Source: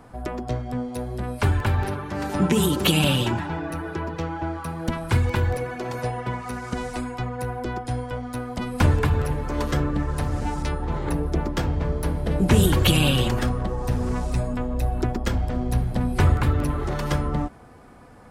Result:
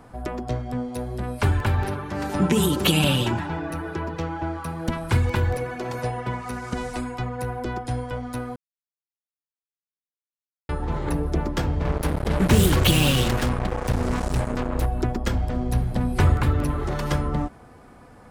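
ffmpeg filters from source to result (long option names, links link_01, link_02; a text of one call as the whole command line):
ffmpeg -i in.wav -filter_complex "[0:a]asettb=1/sr,asplit=3[link_01][link_02][link_03];[link_01]atrim=end=11.854[link_04];[link_02]atrim=start=11.85:end=14.86,asetpts=PTS-STARTPTS,afade=type=in:duration=0.004:curve=qsin,afade=type=out:start_time=3.006:duration=0.004:curve=qsin,acrusher=bits=3:mix=0:aa=0.5[link_05];[link_03]atrim=start=14.856[link_06];[link_04][link_05]acrossfade=duration=0.004:curve1=hsin:curve2=qsin[link_07];[link_07][link_06]acrossfade=duration=0.004:curve1=qsin:curve2=hsin,asplit=3[link_08][link_09][link_10];[link_08]atrim=end=8.56,asetpts=PTS-STARTPTS,afade=type=out:start_time=8.556:duration=0.004:curve=hsin[link_11];[link_09]atrim=start=8.56:end=10.69,asetpts=PTS-STARTPTS,volume=0[link_12];[link_10]atrim=start=10.69,asetpts=PTS-STARTPTS,afade=type=in:duration=0.004:curve=hsin[link_13];[link_11][link_12][link_13]concat=n=3:v=0:a=1" out.wav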